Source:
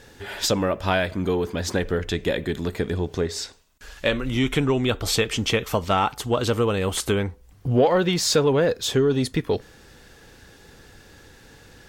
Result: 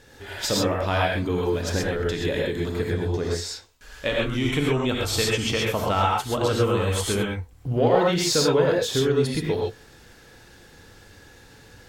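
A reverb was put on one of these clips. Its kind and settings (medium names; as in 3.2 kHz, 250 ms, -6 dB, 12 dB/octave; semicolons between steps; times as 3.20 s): gated-style reverb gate 150 ms rising, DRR -2.5 dB; trim -4.5 dB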